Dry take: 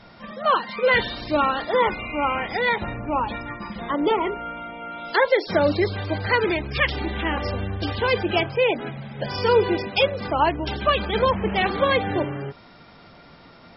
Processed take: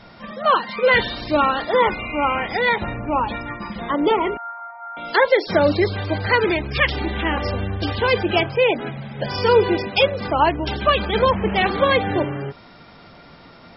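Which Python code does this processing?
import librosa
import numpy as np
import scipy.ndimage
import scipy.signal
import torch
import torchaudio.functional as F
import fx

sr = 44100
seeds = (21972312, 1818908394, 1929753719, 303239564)

y = fx.ellip_bandpass(x, sr, low_hz=740.0, high_hz=1700.0, order=3, stop_db=40, at=(4.37, 4.97))
y = y * 10.0 ** (3.0 / 20.0)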